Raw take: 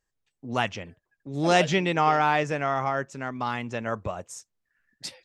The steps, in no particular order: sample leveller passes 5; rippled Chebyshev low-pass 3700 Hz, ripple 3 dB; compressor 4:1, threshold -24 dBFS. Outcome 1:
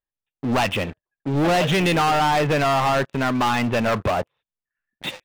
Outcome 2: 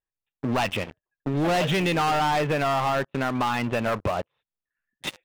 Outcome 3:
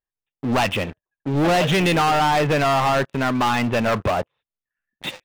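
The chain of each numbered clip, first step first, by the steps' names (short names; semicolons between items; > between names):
compressor > rippled Chebyshev low-pass > sample leveller; rippled Chebyshev low-pass > sample leveller > compressor; rippled Chebyshev low-pass > compressor > sample leveller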